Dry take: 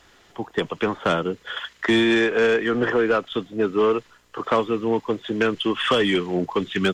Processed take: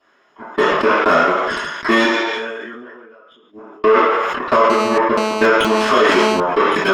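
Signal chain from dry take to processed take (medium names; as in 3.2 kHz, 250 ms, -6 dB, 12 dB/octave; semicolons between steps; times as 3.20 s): bass shelf 220 Hz -11.5 dB; 2.05–3.84 s: inverted gate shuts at -24 dBFS, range -32 dB; feedback echo behind a high-pass 191 ms, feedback 37%, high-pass 4.5 kHz, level -14.5 dB; Chebyshev shaper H 4 -21 dB, 7 -15 dB, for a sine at -8.5 dBFS; reverberation RT60 0.55 s, pre-delay 3 ms, DRR -13.5 dB; 4.70–6.40 s: mobile phone buzz -13 dBFS; loudness maximiser -5.5 dB; decay stretcher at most 27 dB/s; trim -3 dB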